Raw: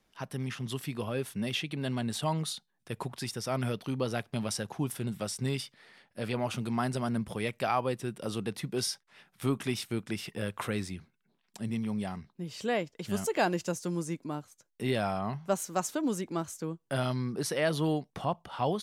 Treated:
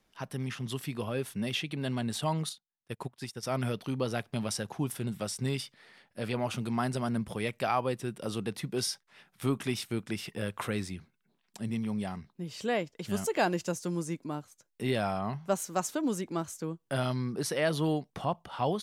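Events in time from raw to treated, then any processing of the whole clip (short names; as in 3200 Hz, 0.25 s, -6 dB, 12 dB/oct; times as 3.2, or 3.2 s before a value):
2.49–3.43 upward expander 2.5:1, over -48 dBFS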